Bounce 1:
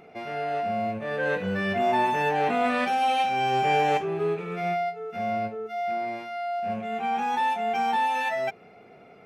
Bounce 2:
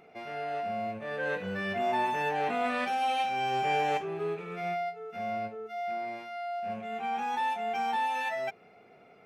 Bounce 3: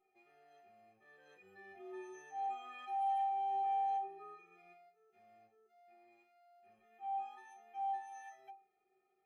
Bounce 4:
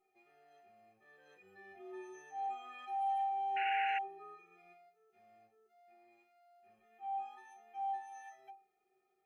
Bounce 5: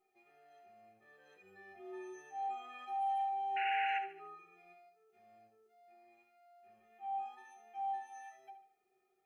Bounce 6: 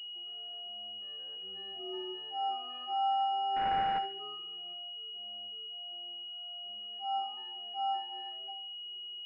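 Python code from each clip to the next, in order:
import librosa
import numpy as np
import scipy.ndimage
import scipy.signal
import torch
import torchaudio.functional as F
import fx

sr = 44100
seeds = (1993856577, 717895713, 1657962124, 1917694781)

y1 = fx.low_shelf(x, sr, hz=430.0, db=-4.0)
y1 = y1 * 10.0 ** (-4.5 / 20.0)
y2 = fx.stiff_resonator(y1, sr, f0_hz=370.0, decay_s=0.35, stiffness=0.03)
y2 = y2 * 10.0 ** (-4.5 / 20.0)
y3 = fx.spec_paint(y2, sr, seeds[0], shape='noise', start_s=3.56, length_s=0.43, low_hz=1400.0, high_hz=2900.0, level_db=-40.0)
y4 = fx.echo_feedback(y3, sr, ms=73, feedback_pct=42, wet_db=-11.0)
y5 = fx.pwm(y4, sr, carrier_hz=2900.0)
y5 = y5 * 10.0 ** (5.5 / 20.0)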